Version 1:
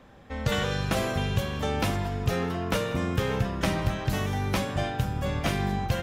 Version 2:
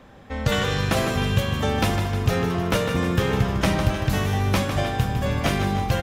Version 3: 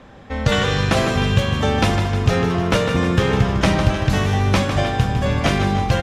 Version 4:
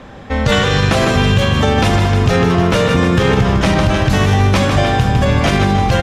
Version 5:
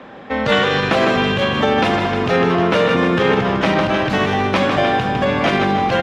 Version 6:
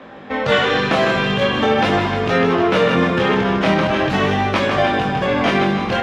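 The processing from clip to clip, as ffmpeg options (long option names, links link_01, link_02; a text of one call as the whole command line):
ffmpeg -i in.wav -af "aecho=1:1:154|308|462|616|770|924|1078:0.355|0.199|0.111|0.0623|0.0349|0.0195|0.0109,volume=4.5dB" out.wav
ffmpeg -i in.wav -af "lowpass=7900,volume=4.5dB" out.wav
ffmpeg -i in.wav -af "alimiter=level_in=11dB:limit=-1dB:release=50:level=0:latency=1,volume=-3dB" out.wav
ffmpeg -i in.wav -filter_complex "[0:a]acrossover=split=180 4100:gain=0.1 1 0.158[link_01][link_02][link_03];[link_01][link_02][link_03]amix=inputs=3:normalize=0" out.wav
ffmpeg -i in.wav -af "flanger=delay=18.5:depth=7.7:speed=0.43,volume=2.5dB" out.wav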